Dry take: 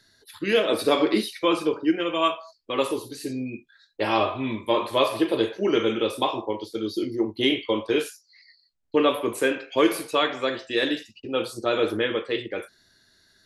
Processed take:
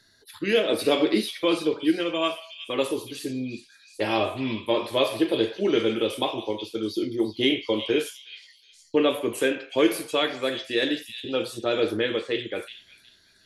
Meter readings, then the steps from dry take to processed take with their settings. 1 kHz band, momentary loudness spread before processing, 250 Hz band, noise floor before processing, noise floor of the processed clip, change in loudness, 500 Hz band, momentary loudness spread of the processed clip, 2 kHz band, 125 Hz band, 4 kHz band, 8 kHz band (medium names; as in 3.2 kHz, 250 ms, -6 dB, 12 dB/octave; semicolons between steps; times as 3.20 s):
-5.0 dB, 9 LU, 0.0 dB, -65 dBFS, -58 dBFS, -1.0 dB, -0.5 dB, 10 LU, -1.0 dB, 0.0 dB, +0.5 dB, +0.5 dB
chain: dynamic bell 1.1 kHz, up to -7 dB, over -38 dBFS, Q 1.8; on a send: repeats whose band climbs or falls 365 ms, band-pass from 3.6 kHz, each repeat 0.7 oct, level -8 dB